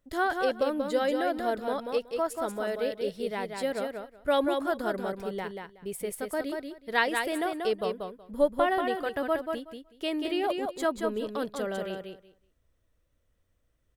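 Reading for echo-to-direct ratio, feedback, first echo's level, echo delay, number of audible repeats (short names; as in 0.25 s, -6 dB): -5.0 dB, 16%, -5.0 dB, 0.186 s, 2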